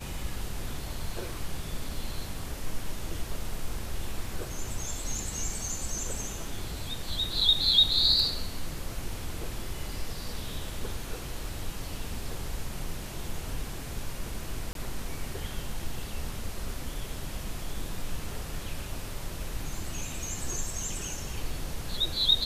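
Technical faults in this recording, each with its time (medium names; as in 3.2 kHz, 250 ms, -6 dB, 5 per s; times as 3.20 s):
14.73–14.75 s: dropout 22 ms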